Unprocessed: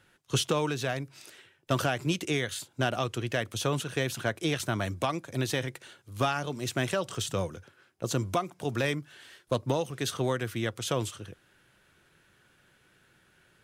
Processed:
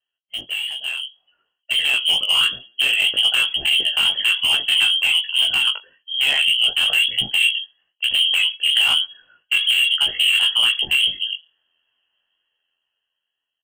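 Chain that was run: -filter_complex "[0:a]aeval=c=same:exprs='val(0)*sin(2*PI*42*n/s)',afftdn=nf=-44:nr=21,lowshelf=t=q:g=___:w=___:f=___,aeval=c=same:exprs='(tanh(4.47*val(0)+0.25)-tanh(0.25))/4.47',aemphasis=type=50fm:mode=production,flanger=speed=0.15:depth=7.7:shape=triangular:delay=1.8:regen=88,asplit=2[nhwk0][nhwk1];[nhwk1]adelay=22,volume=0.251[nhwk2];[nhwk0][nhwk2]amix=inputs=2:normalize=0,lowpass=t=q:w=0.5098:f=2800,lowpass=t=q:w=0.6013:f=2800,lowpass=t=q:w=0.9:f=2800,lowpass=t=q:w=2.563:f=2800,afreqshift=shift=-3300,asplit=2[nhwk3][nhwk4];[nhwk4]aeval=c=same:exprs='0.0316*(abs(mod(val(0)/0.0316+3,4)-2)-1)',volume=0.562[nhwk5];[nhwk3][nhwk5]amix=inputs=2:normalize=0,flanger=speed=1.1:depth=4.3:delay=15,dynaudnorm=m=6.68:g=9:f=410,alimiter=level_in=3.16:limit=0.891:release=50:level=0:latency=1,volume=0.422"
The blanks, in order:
8, 3, 740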